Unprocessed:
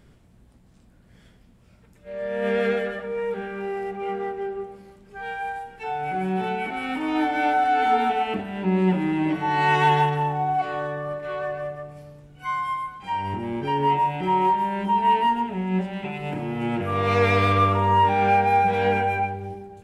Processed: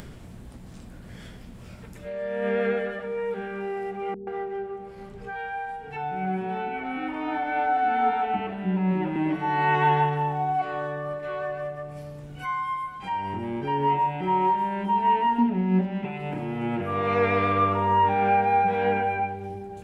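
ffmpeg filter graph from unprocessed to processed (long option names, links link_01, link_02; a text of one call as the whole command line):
ffmpeg -i in.wav -filter_complex "[0:a]asettb=1/sr,asplit=3[link_01][link_02][link_03];[link_01]atrim=end=4.144[link_04];[link_02]atrim=start=4.14:end=9.16,asetpts=PTS-STARTPTS,afade=type=in:duration=0.004:curve=qsin,afade=type=out:start_time=5.016:duration=0.004:curve=qsin,highshelf=frequency=4700:gain=-10,acrossover=split=340[link_05][link_06];[link_06]adelay=130[link_07];[link_05][link_07]amix=inputs=2:normalize=0,atrim=end_sample=221382[link_08];[link_03]atrim=start=9.156[link_09];[link_04][link_08]acrossfade=duration=0.004:curve1=hsin:curve2=qsin[link_10];[link_10][link_09]acrossfade=duration=0.004:curve1=qsin:curve2=hsin,asettb=1/sr,asplit=3[link_11][link_12][link_13];[link_11]atrim=end=15.384[link_14];[link_12]atrim=start=15.38:end=16.05,asetpts=PTS-STARTPTS,afade=type=in:duration=0.004:curve=qsin,afade=type=out:start_time=0.666:duration=0.004:curve=qsin,equalizer=frequency=250:width=2.7:gain=14,adynamicsmooth=sensitivity=3:basefreq=3200[link_15];[link_13]atrim=start=16.046[link_16];[link_14][link_15]acrossfade=duration=0.004:curve1=hsin:curve2=qsin[link_17];[link_17][link_16]acrossfade=duration=0.004:curve1=qsin:curve2=hsin,acrossover=split=2800[link_18][link_19];[link_19]acompressor=threshold=-52dB:ratio=4:attack=1:release=60[link_20];[link_18][link_20]amix=inputs=2:normalize=0,bandreject=frequency=50:width_type=h:width=6,bandreject=frequency=100:width_type=h:width=6,acompressor=mode=upward:threshold=-27dB:ratio=2.5,volume=-2dB" out.wav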